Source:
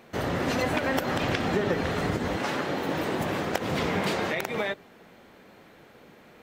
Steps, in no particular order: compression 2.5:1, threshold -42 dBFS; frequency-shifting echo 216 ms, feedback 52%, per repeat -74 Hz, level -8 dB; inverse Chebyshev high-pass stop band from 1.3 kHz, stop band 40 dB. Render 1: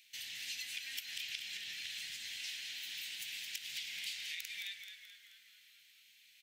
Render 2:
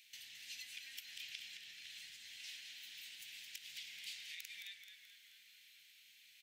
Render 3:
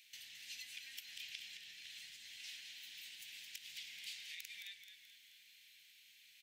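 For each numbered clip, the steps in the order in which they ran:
inverse Chebyshev high-pass > compression > frequency-shifting echo; compression > inverse Chebyshev high-pass > frequency-shifting echo; compression > frequency-shifting echo > inverse Chebyshev high-pass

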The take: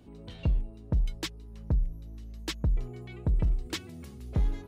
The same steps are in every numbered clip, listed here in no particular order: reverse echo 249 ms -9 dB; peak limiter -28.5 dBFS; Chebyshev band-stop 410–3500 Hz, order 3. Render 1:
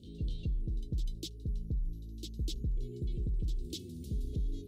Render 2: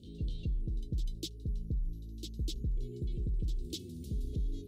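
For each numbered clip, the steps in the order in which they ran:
reverse echo > Chebyshev band-stop > peak limiter; reverse echo > peak limiter > Chebyshev band-stop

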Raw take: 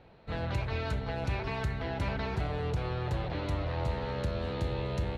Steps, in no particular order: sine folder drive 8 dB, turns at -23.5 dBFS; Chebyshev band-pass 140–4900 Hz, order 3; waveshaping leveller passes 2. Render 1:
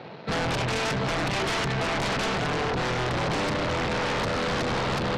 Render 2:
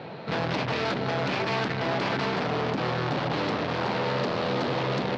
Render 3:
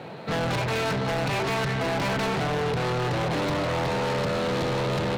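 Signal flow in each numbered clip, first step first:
waveshaping leveller > Chebyshev band-pass > sine folder; sine folder > waveshaping leveller > Chebyshev band-pass; Chebyshev band-pass > sine folder > waveshaping leveller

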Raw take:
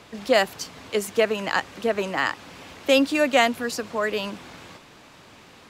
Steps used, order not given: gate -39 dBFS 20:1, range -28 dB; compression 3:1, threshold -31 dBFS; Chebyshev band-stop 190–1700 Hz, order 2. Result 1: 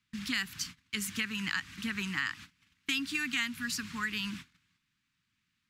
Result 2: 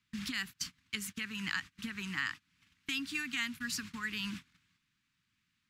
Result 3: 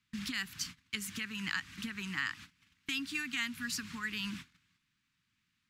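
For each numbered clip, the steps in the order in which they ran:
gate > Chebyshev band-stop > compression; compression > gate > Chebyshev band-stop; gate > compression > Chebyshev band-stop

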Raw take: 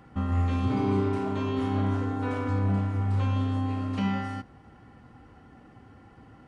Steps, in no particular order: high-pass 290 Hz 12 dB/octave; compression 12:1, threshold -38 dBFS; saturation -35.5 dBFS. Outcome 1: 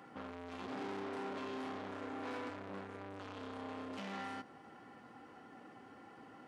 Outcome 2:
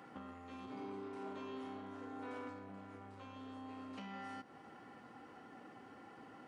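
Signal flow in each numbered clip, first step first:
saturation > compression > high-pass; compression > saturation > high-pass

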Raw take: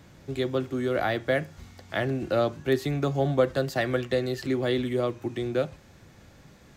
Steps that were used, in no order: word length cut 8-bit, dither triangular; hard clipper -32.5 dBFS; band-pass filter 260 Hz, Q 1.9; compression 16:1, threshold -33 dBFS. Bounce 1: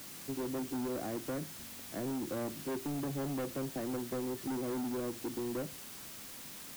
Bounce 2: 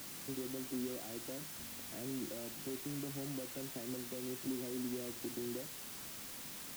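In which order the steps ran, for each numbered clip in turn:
band-pass filter > hard clipper > word length cut > compression; compression > hard clipper > band-pass filter > word length cut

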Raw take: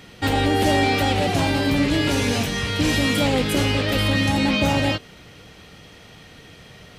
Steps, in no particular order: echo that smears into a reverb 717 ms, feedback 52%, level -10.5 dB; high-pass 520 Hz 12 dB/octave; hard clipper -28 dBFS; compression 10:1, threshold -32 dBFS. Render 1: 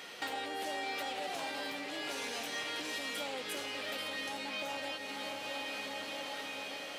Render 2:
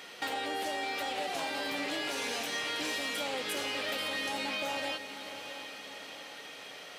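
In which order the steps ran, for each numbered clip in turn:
echo that smears into a reverb > compression > hard clipper > high-pass; high-pass > compression > hard clipper > echo that smears into a reverb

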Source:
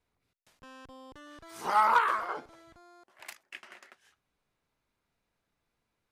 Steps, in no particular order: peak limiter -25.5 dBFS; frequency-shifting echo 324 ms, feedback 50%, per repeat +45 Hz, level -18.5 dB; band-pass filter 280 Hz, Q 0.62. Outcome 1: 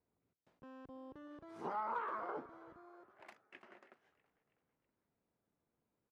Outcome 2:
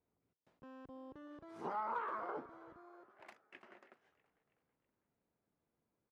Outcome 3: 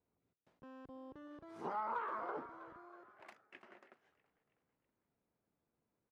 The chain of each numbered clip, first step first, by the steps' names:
peak limiter > frequency-shifting echo > band-pass filter; peak limiter > band-pass filter > frequency-shifting echo; frequency-shifting echo > peak limiter > band-pass filter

